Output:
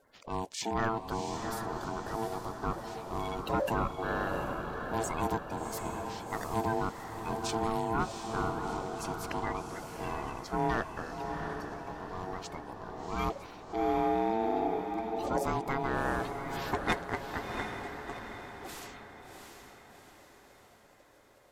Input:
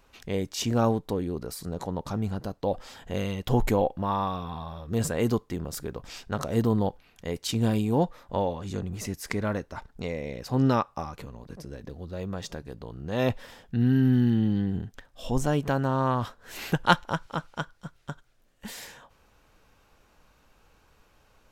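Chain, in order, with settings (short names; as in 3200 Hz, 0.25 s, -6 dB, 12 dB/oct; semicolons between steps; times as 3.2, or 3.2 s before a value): bin magnitudes rounded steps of 30 dB; ring modulator 560 Hz; soft clip -17.5 dBFS, distortion -16 dB; diffused feedback echo 0.725 s, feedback 50%, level -5.5 dB; gain -2.5 dB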